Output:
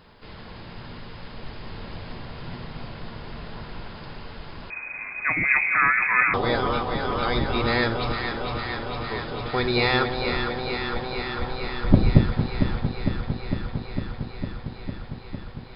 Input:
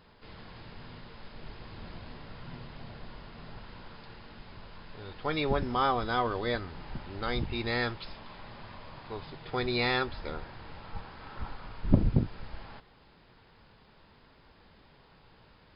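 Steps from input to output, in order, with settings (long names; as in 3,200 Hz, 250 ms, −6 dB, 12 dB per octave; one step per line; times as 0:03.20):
delay that swaps between a low-pass and a high-pass 227 ms, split 830 Hz, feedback 89%, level −5 dB
0:04.70–0:06.34: voice inversion scrambler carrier 2,500 Hz
level +6.5 dB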